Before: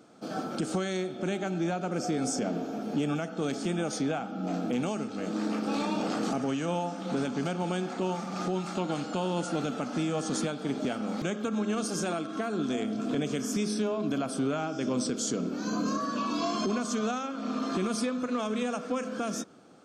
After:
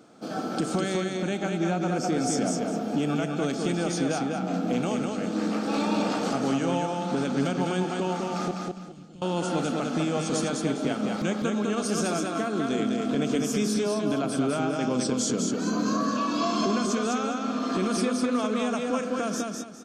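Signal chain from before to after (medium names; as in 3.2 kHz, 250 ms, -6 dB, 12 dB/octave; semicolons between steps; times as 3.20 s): 8.51–9.22 s: amplifier tone stack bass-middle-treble 10-0-1; feedback delay 203 ms, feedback 27%, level -3.5 dB; trim +2.5 dB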